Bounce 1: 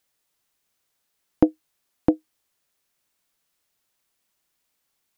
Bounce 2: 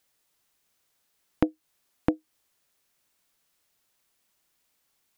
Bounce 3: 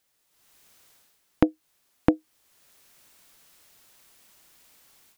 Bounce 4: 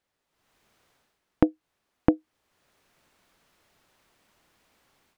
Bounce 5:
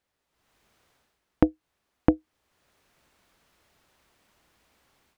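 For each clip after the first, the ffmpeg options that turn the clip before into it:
ffmpeg -i in.wav -af "acompressor=threshold=-26dB:ratio=2.5,volume=2dB" out.wav
ffmpeg -i in.wav -af "dynaudnorm=framelen=300:gausssize=3:maxgain=16dB,volume=-1dB" out.wav
ffmpeg -i in.wav -af "lowpass=frequency=1600:poles=1" out.wav
ffmpeg -i in.wav -af "equalizer=frequency=62:width_type=o:width=0.63:gain=7.5" out.wav

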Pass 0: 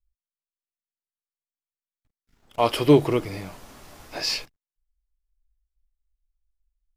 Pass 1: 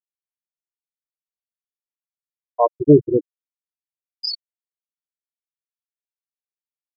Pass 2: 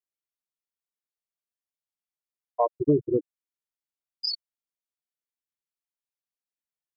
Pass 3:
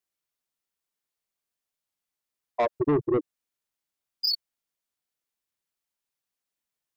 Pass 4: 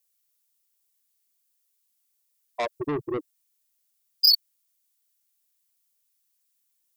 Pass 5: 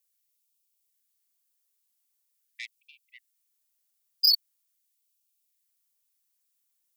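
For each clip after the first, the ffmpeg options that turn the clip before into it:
ffmpeg -i in.wav -af "dynaudnorm=framelen=100:gausssize=3:maxgain=9dB,afftfilt=real='re*gte(hypot(re,im),0.708)':imag='im*gte(hypot(re,im),0.708)':win_size=1024:overlap=0.75,volume=1dB" out.wav
ffmpeg -i in.wav -af "acompressor=threshold=-16dB:ratio=3,volume=-3.5dB" out.wav
ffmpeg -i in.wav -filter_complex "[0:a]asplit=2[link_01][link_02];[link_02]alimiter=limit=-20dB:level=0:latency=1:release=85,volume=-2.5dB[link_03];[link_01][link_03]amix=inputs=2:normalize=0,asoftclip=type=tanh:threshold=-20dB,volume=1.5dB" out.wav
ffmpeg -i in.wav -af "crystalizer=i=7:c=0,volume=-6dB" out.wav
ffmpeg -i in.wav -af "afftfilt=real='re*gte(b*sr/1024,360*pow(2300/360,0.5+0.5*sin(2*PI*0.43*pts/sr)))':imag='im*gte(b*sr/1024,360*pow(2300/360,0.5+0.5*sin(2*PI*0.43*pts/sr)))':win_size=1024:overlap=0.75,volume=-3dB" out.wav

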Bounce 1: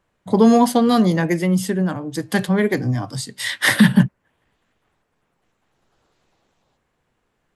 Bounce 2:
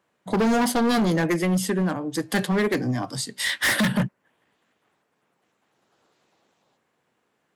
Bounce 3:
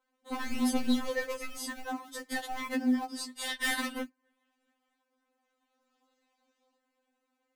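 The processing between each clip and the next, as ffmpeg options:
ffmpeg -i in.wav -af "highpass=180,asoftclip=type=hard:threshold=-18dB" out.wav
ffmpeg -i in.wav -filter_complex "[0:a]asplit=2[link_01][link_02];[link_02]acrusher=samples=23:mix=1:aa=0.000001:lfo=1:lforange=13.8:lforate=3.1,volume=-10dB[link_03];[link_01][link_03]amix=inputs=2:normalize=0,afftfilt=real='re*3.46*eq(mod(b,12),0)':imag='im*3.46*eq(mod(b,12),0)':win_size=2048:overlap=0.75,volume=-7dB" out.wav

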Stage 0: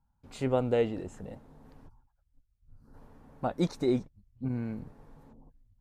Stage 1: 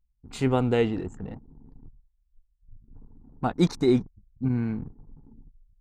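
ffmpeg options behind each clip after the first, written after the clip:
ffmpeg -i in.wav -af "anlmdn=0.00631,equalizer=frequency=570:width=3.4:gain=-12.5,volume=7.5dB" out.wav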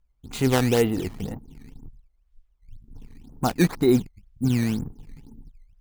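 ffmpeg -i in.wav -filter_complex "[0:a]asplit=2[link_01][link_02];[link_02]alimiter=limit=-20.5dB:level=0:latency=1:release=355,volume=-2dB[link_03];[link_01][link_03]amix=inputs=2:normalize=0,acrusher=samples=12:mix=1:aa=0.000001:lfo=1:lforange=19.2:lforate=2" out.wav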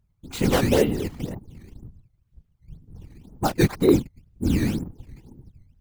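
ffmpeg -i in.wav -af "afftfilt=real='hypot(re,im)*cos(2*PI*random(0))':imag='hypot(re,im)*sin(2*PI*random(1))':win_size=512:overlap=0.75,asoftclip=type=hard:threshold=-13dB,volume=6.5dB" out.wav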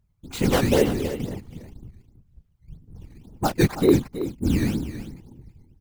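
ffmpeg -i in.wav -af "aecho=1:1:325:0.251" out.wav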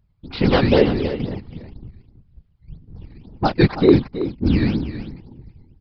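ffmpeg -i in.wav -af "aresample=11025,aresample=44100,volume=4.5dB" out.wav

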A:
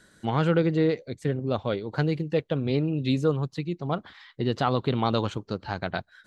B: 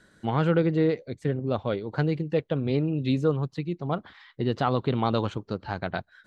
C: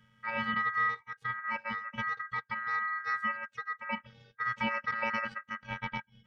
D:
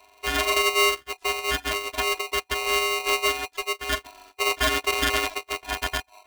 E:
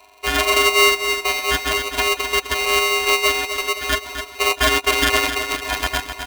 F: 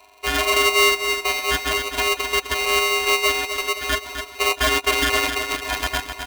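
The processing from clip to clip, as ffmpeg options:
ffmpeg -i in.wav -af "highshelf=frequency=4400:gain=-8.5" out.wav
ffmpeg -i in.wav -af "afftfilt=real='hypot(re,im)*cos(PI*b)':imag='0':win_size=512:overlap=0.75,aeval=exprs='val(0)*sin(2*PI*1600*n/s)':channel_layout=same,bass=frequency=250:gain=8,treble=frequency=4000:gain=-12" out.wav
ffmpeg -i in.wav -af "aeval=exprs='val(0)*sgn(sin(2*PI*850*n/s))':channel_layout=same,volume=9dB" out.wav
ffmpeg -i in.wav -af "aecho=1:1:257|514|771|1028|1285|1542|1799:0.376|0.21|0.118|0.066|0.037|0.0207|0.0116,volume=5.5dB" out.wav
ffmpeg -i in.wav -af "asoftclip=type=hard:threshold=-8.5dB,volume=-1.5dB" out.wav

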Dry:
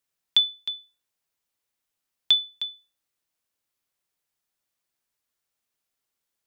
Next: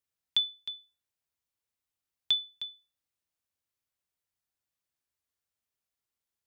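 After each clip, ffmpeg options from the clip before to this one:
ffmpeg -i in.wav -af "equalizer=frequency=80:width_type=o:width=1.2:gain=9.5,volume=-7.5dB" out.wav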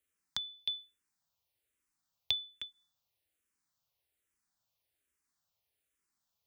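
ffmpeg -i in.wav -filter_complex "[0:a]acrossover=split=280[link_01][link_02];[link_02]acompressor=threshold=-38dB:ratio=6[link_03];[link_01][link_03]amix=inputs=2:normalize=0,asplit=2[link_04][link_05];[link_05]afreqshift=-1.2[link_06];[link_04][link_06]amix=inputs=2:normalize=1,volume=7dB" out.wav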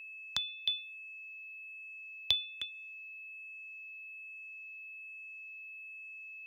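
ffmpeg -i in.wav -af "aeval=exprs='val(0)+0.00398*sin(2*PI*2600*n/s)':channel_layout=same,volume=3dB" out.wav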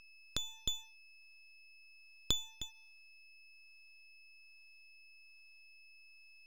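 ffmpeg -i in.wav -af "highpass=frequency=240:width=0.5412,highpass=frequency=240:width=1.3066,equalizer=frequency=310:width_type=q:width=4:gain=6,equalizer=frequency=990:width_type=q:width=4:gain=3,equalizer=frequency=1700:width_type=q:width=4:gain=-7,equalizer=frequency=2600:width_type=q:width=4:gain=-10,lowpass=frequency=6200:width=0.5412,lowpass=frequency=6200:width=1.3066,aeval=exprs='max(val(0),0)':channel_layout=same,volume=2dB" out.wav

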